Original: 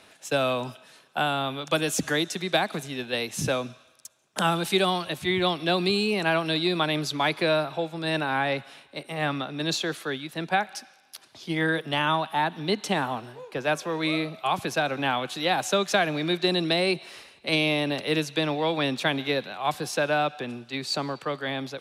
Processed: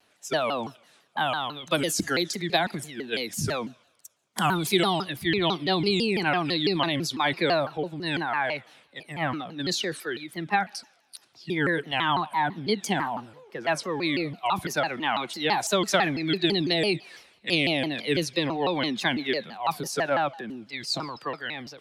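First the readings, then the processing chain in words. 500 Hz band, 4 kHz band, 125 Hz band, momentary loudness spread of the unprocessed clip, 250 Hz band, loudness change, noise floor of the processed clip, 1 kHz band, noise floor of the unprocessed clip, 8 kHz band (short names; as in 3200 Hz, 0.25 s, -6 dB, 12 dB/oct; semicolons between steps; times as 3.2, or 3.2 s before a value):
-1.5 dB, 0.0 dB, -1.0 dB, 9 LU, 0.0 dB, -0.5 dB, -64 dBFS, 0.0 dB, -57 dBFS, +1.0 dB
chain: spectral noise reduction 11 dB; transient shaper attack +1 dB, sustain +5 dB; shaped vibrato saw down 6 Hz, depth 250 cents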